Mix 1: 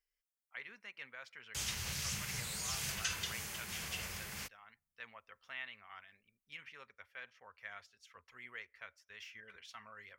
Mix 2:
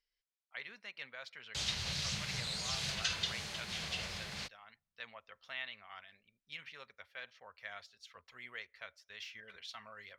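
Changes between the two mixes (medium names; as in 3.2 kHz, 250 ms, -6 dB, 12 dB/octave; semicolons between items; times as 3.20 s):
background: add distance through air 67 m; master: add fifteen-band graphic EQ 160 Hz +4 dB, 630 Hz +6 dB, 4 kHz +11 dB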